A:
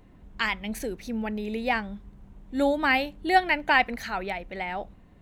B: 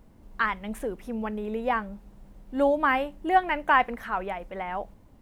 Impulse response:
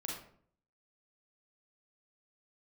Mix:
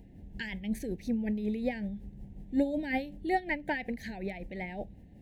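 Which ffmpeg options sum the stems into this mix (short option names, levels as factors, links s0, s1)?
-filter_complex "[0:a]acompressor=threshold=0.0141:ratio=2,volume=0.473[s0];[1:a]aeval=exprs='val(0)*pow(10,-18*(0.5-0.5*cos(2*PI*5.4*n/s))/20)':c=same,volume=0.531[s1];[s0][s1]amix=inputs=2:normalize=0,asuperstop=centerf=1200:order=8:qfactor=1.6,equalizer=f=120:w=0.33:g=9"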